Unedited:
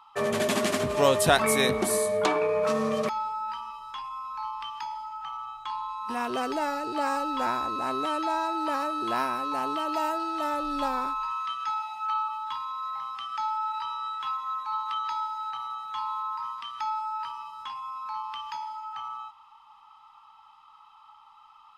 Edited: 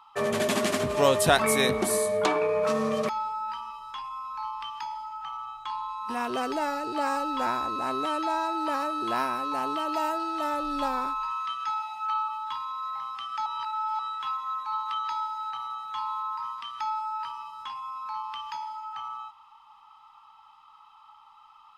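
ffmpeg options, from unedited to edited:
-filter_complex "[0:a]asplit=3[s0][s1][s2];[s0]atrim=end=13.462[s3];[s1]atrim=start=13.458:end=13.992,asetpts=PTS-STARTPTS,areverse[s4];[s2]atrim=start=13.988[s5];[s3][s4]acrossfade=d=0.004:c1=hsin:c2=hsin[s6];[s6][s5]acrossfade=d=0.004:c1=hsin:c2=hsin"

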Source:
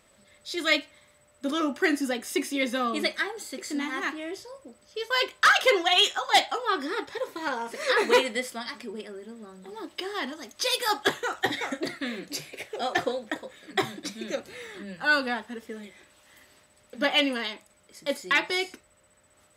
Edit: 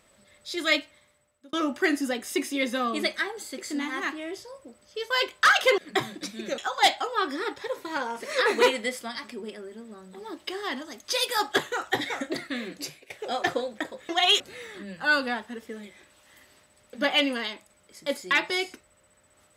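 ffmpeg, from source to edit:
-filter_complex "[0:a]asplit=7[s0][s1][s2][s3][s4][s5][s6];[s0]atrim=end=1.53,asetpts=PTS-STARTPTS,afade=t=out:st=0.78:d=0.75[s7];[s1]atrim=start=1.53:end=5.782,asetpts=PTS-STARTPTS,afade=t=in:d=0.004:c=hsin[s8];[s2]atrim=start=13.598:end=14.402[s9];[s3]atrim=start=6.088:end=12.61,asetpts=PTS-STARTPTS,afade=t=out:st=6.202:d=0.32:silence=0.0891251[s10];[s4]atrim=start=12.61:end=13.602,asetpts=PTS-STARTPTS,afade=t=in:d=0.004:c=hsin:silence=0.0891251[s11];[s5]atrim=start=5.778:end=6.092[s12];[s6]atrim=start=14.398[s13];[s7][s8]concat=n=2:v=0:a=1[s14];[s14][s9]acrossfade=d=0.004:c1=hsin:c2=hsin[s15];[s10][s11]concat=n=2:v=0:a=1[s16];[s15][s16]acrossfade=d=0.004:c1=hsin:c2=hsin[s17];[s17][s12]acrossfade=d=0.004:c1=hsin:c2=hsin[s18];[s18][s13]acrossfade=d=0.004:c1=hsin:c2=hsin"

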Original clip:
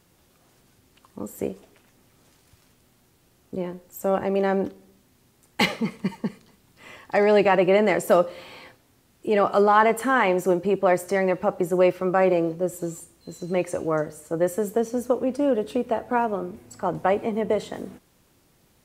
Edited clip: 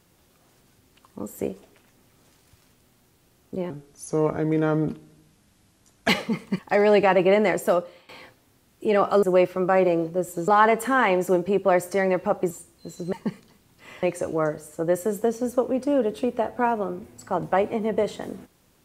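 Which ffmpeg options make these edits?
-filter_complex "[0:a]asplit=10[s0][s1][s2][s3][s4][s5][s6][s7][s8][s9];[s0]atrim=end=3.704[s10];[s1]atrim=start=3.7:end=5.61,asetpts=PTS-STARTPTS,asetrate=35280,aresample=44100[s11];[s2]atrim=start=5.606:end=6.112[s12];[s3]atrim=start=7.008:end=8.51,asetpts=PTS-STARTPTS,afade=t=out:st=0.692:d=0.81:c=qsin:silence=0.125893[s13];[s4]atrim=start=8.51:end=9.652,asetpts=PTS-STARTPTS,afade=t=in:d=0.004:c=hsin:silence=0.125893[s14];[s5]atrim=start=11.678:end=12.932[s15];[s6]atrim=start=9.648:end=11.682[s16];[s7]atrim=start=12.928:end=13.552[s17];[s8]atrim=start=6.108:end=7.012[s18];[s9]atrim=start=13.548[s19];[s10][s11]acrossfade=d=0.004:c1=hsin:c2=hsin[s20];[s20][s12]acrossfade=d=0.004:c1=hsin:c2=hsin[s21];[s13][s14]concat=n=2:v=0:a=1[s22];[s21][s22]acrossfade=d=0.004:c1=hsin:c2=hsin[s23];[s23][s15]acrossfade=d=0.004:c1=hsin:c2=hsin[s24];[s24][s16]acrossfade=d=0.004:c1=hsin:c2=hsin[s25];[s25][s17]acrossfade=d=0.004:c1=hsin:c2=hsin[s26];[s26][s18]acrossfade=d=0.004:c1=hsin:c2=hsin[s27];[s27][s19]acrossfade=d=0.004:c1=hsin:c2=hsin"

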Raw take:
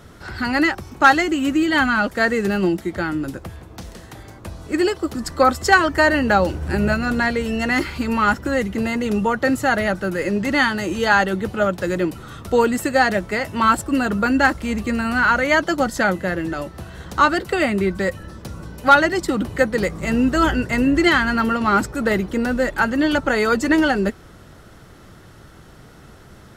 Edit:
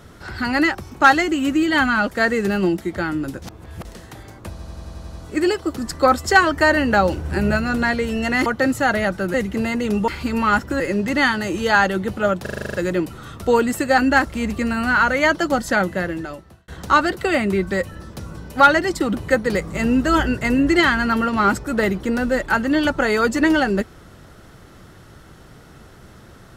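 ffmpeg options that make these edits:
-filter_complex "[0:a]asplit=24[s0][s1][s2][s3][s4][s5][s6][s7][s8][s9][s10][s11][s12][s13][s14][s15][s16][s17][s18][s19][s20][s21][s22][s23];[s0]atrim=end=3.422[s24];[s1]atrim=start=3.418:end=3.852,asetpts=PTS-STARTPTS,areverse[s25];[s2]atrim=start=3.848:end=4.592[s26];[s3]atrim=start=4.498:end=4.592[s27];[s4]atrim=start=4.498:end=4.592[s28];[s5]atrim=start=4.498:end=4.592[s29];[s6]atrim=start=4.498:end=4.592[s30];[s7]atrim=start=4.498:end=4.592[s31];[s8]atrim=start=4.498:end=4.592[s32];[s9]atrim=start=4.498:end=7.832[s33];[s10]atrim=start=9.288:end=10.172[s34];[s11]atrim=start=8.548:end=9.292[s35];[s12]atrim=start=7.828:end=8.552[s36];[s13]atrim=start=10.168:end=11.832[s37];[s14]atrim=start=11.788:end=11.832[s38];[s15]atrim=start=11.788:end=11.832[s39];[s16]atrim=start=11.788:end=11.832[s40];[s17]atrim=start=11.788:end=11.832[s41];[s18]atrim=start=11.788:end=11.832[s42];[s19]atrim=start=11.788:end=11.832[s43];[s20]atrim=start=11.788:end=11.832[s44];[s21]atrim=start=11.788:end=13.032[s45];[s22]atrim=start=14.258:end=16.96,asetpts=PTS-STARTPTS,afade=t=out:st=2.012:d=0.69[s46];[s23]atrim=start=16.96,asetpts=PTS-STARTPTS,afade=t=in:d=0.004:c=hsin[s47];[s24][s25]acrossfade=d=0.004:c1=hsin:c2=hsin[s48];[s48][s26]acrossfade=d=0.004:c1=hsin:c2=hsin[s49];[s49][s27]acrossfade=d=0.004:c1=hsin:c2=hsin[s50];[s50][s28]acrossfade=d=0.004:c1=hsin:c2=hsin[s51];[s51][s29]acrossfade=d=0.004:c1=hsin:c2=hsin[s52];[s52][s30]acrossfade=d=0.004:c1=hsin:c2=hsin[s53];[s53][s31]acrossfade=d=0.004:c1=hsin:c2=hsin[s54];[s54][s32]acrossfade=d=0.004:c1=hsin:c2=hsin[s55];[s55][s33]acrossfade=d=0.004:c1=hsin:c2=hsin[s56];[s56][s34]acrossfade=d=0.004:c1=hsin:c2=hsin[s57];[s57][s35]acrossfade=d=0.004:c1=hsin:c2=hsin[s58];[s58][s36]acrossfade=d=0.004:c1=hsin:c2=hsin[s59];[s59][s37]acrossfade=d=0.004:c1=hsin:c2=hsin[s60];[s60][s38]acrossfade=d=0.004:c1=hsin:c2=hsin[s61];[s61][s39]acrossfade=d=0.004:c1=hsin:c2=hsin[s62];[s62][s40]acrossfade=d=0.004:c1=hsin:c2=hsin[s63];[s63][s41]acrossfade=d=0.004:c1=hsin:c2=hsin[s64];[s64][s42]acrossfade=d=0.004:c1=hsin:c2=hsin[s65];[s65][s43]acrossfade=d=0.004:c1=hsin:c2=hsin[s66];[s66][s44]acrossfade=d=0.004:c1=hsin:c2=hsin[s67];[s67][s45]acrossfade=d=0.004:c1=hsin:c2=hsin[s68];[s46][s47]concat=n=2:v=0:a=1[s69];[s68][s69]acrossfade=d=0.004:c1=hsin:c2=hsin"

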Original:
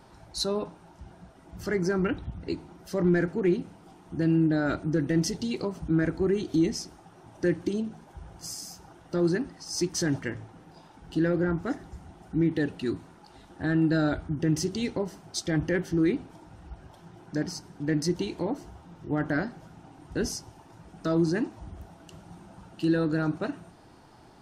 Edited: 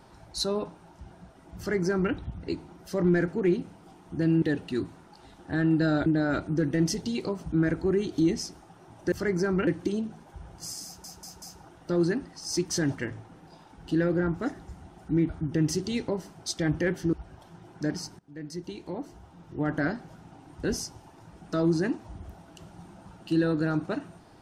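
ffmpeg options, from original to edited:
-filter_complex "[0:a]asplit=11[s0][s1][s2][s3][s4][s5][s6][s7][s8][s9][s10];[s0]atrim=end=4.422[s11];[s1]atrim=start=12.528:end=14.172[s12];[s2]atrim=start=4.418:end=7.482[s13];[s3]atrim=start=1.578:end=2.132[s14];[s4]atrim=start=7.478:end=8.852[s15];[s5]atrim=start=8.658:end=8.852[s16];[s6]atrim=start=8.658:end=8.852[s17];[s7]atrim=start=8.658:end=12.532[s18];[s8]atrim=start=14.168:end=16.012[s19];[s9]atrim=start=16.648:end=17.71,asetpts=PTS-STARTPTS,afade=t=out:st=1.058:d=0.004:c=hsin:silence=0.0891251[s20];[s10]atrim=start=17.71,asetpts=PTS-STARTPTS,afade=t=in:d=1.57:silence=0.0891251[s21];[s11][s12]acrossfade=d=0.004:c1=hsin:c2=hsin[s22];[s22][s13]acrossfade=d=0.004:c1=hsin:c2=hsin[s23];[s23][s14]acrossfade=d=0.004:c1=hsin:c2=hsin[s24];[s24][s15]acrossfade=d=0.004:c1=hsin:c2=hsin[s25];[s25][s16]acrossfade=d=0.004:c1=hsin:c2=hsin[s26];[s26][s17]acrossfade=d=0.004:c1=hsin:c2=hsin[s27];[s27][s18]acrossfade=d=0.004:c1=hsin:c2=hsin[s28];[s28][s19]acrossfade=d=0.004:c1=hsin:c2=hsin[s29];[s20][s21]concat=n=2:v=0:a=1[s30];[s29][s30]acrossfade=d=0.004:c1=hsin:c2=hsin"

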